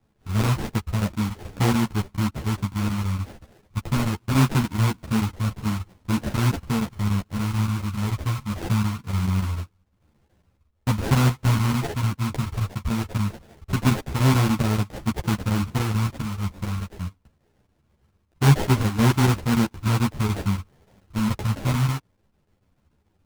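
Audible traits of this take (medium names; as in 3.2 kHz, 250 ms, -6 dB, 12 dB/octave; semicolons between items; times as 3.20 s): phasing stages 2, 0.22 Hz, lowest notch 440–1100 Hz; aliases and images of a low sample rate 1.2 kHz, jitter 20%; chopped level 6.9 Hz, depth 60%, duty 85%; a shimmering, thickened sound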